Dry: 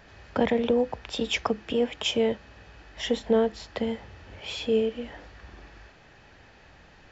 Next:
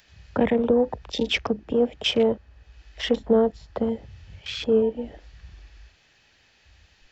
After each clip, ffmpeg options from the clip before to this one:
-filter_complex "[0:a]afwtdn=0.0158,acrossover=split=490|2400[s0][s1][s2];[s1]alimiter=limit=0.0708:level=0:latency=1:release=233[s3];[s2]acompressor=mode=upward:threshold=0.00224:ratio=2.5[s4];[s0][s3][s4]amix=inputs=3:normalize=0,volume=1.58"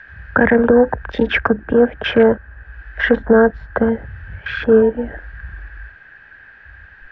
-af "lowpass=f=1600:t=q:w=14,lowshelf=f=75:g=7,alimiter=level_in=2.82:limit=0.891:release=50:level=0:latency=1,volume=0.891"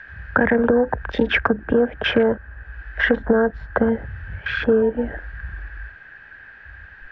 -af "acompressor=threshold=0.224:ratio=6"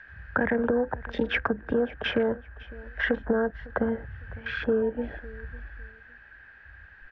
-af "aecho=1:1:554|1108:0.0891|0.0214,volume=0.398"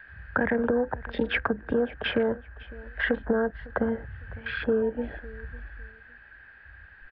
-af "aresample=11025,aresample=44100"

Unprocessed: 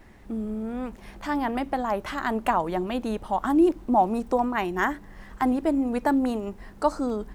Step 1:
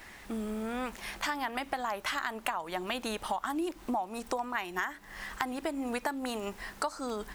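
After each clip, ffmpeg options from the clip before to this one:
-af "tiltshelf=f=750:g=-9.5,acompressor=threshold=0.0251:ratio=12,volume=1.33"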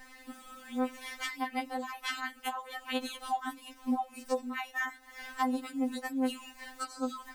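-af "afftfilt=real='re*3.46*eq(mod(b,12),0)':imag='im*3.46*eq(mod(b,12),0)':win_size=2048:overlap=0.75"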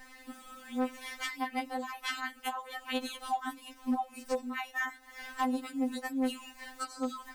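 -af "volume=15,asoftclip=hard,volume=0.0668"

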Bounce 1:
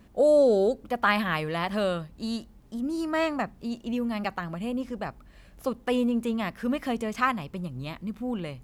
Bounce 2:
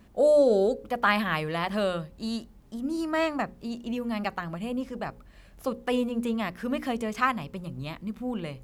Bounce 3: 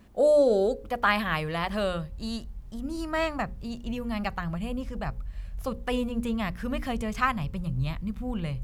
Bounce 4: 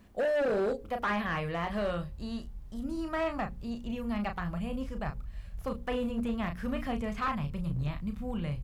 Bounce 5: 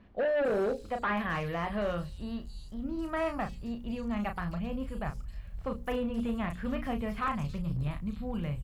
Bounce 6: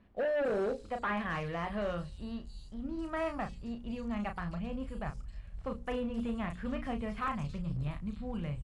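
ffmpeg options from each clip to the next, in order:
-af "bandreject=f=60:t=h:w=6,bandreject=f=120:t=h:w=6,bandreject=f=180:t=h:w=6,bandreject=f=240:t=h:w=6,bandreject=f=300:t=h:w=6,bandreject=f=360:t=h:w=6,bandreject=f=420:t=h:w=6,bandreject=f=480:t=h:w=6,bandreject=f=540:t=h:w=6"
-af "asubboost=boost=10:cutoff=98"
-filter_complex "[0:a]asplit=2[s0][s1];[s1]adelay=34,volume=0.398[s2];[s0][s2]amix=inputs=2:normalize=0,volume=14.1,asoftclip=hard,volume=0.0708,acrossover=split=3000[s3][s4];[s4]acompressor=threshold=0.00251:ratio=4:attack=1:release=60[s5];[s3][s5]amix=inputs=2:normalize=0,volume=0.708"
-filter_complex "[0:a]acrossover=split=4100[s0][s1];[s1]adelay=270[s2];[s0][s2]amix=inputs=2:normalize=0"
-filter_complex "[0:a]aresample=22050,aresample=44100,asplit=2[s0][s1];[s1]aeval=exprs='sgn(val(0))*max(abs(val(0))-0.00251,0)':c=same,volume=0.447[s2];[s0][s2]amix=inputs=2:normalize=0,volume=0.501"

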